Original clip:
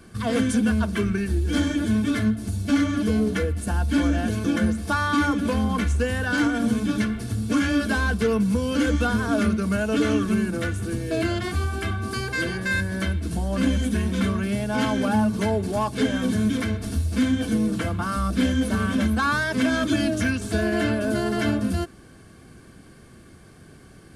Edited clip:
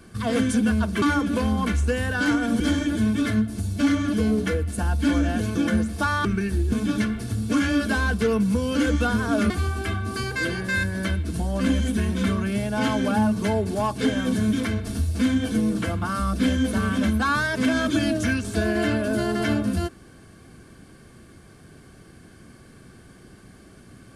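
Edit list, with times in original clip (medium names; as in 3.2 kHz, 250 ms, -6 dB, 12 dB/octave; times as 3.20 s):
1.02–1.49 s: swap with 5.14–6.72 s
9.50–11.47 s: delete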